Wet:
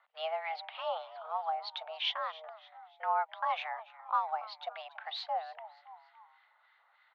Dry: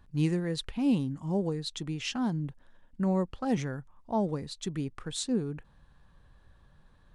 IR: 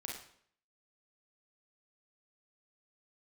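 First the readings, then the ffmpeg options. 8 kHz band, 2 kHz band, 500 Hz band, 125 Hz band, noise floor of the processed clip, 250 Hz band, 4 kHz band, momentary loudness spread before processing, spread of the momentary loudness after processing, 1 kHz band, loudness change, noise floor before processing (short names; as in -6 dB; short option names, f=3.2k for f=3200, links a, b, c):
under -25 dB, +2.5 dB, -5.5 dB, under -40 dB, -69 dBFS, under -40 dB, +1.0 dB, 8 LU, 18 LU, +8.0 dB, -4.5 dB, -60 dBFS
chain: -filter_complex "[0:a]asplit=4[a][b][c][d];[b]adelay=283,afreqshift=110,volume=-20dB[e];[c]adelay=566,afreqshift=220,volume=-26.7dB[f];[d]adelay=849,afreqshift=330,volume=-33.5dB[g];[a][e][f][g]amix=inputs=4:normalize=0,highpass=f=430:t=q:w=0.5412,highpass=f=430:t=q:w=1.307,lowpass=f=3.4k:t=q:w=0.5176,lowpass=f=3.4k:t=q:w=0.7071,lowpass=f=3.4k:t=q:w=1.932,afreqshift=320,acrossover=split=1300[h][i];[h]aeval=exprs='val(0)*(1-0.7/2+0.7/2*cos(2*PI*3.2*n/s))':c=same[j];[i]aeval=exprs='val(0)*(1-0.7/2-0.7/2*cos(2*PI*3.2*n/s))':c=same[k];[j][k]amix=inputs=2:normalize=0,volume=6dB"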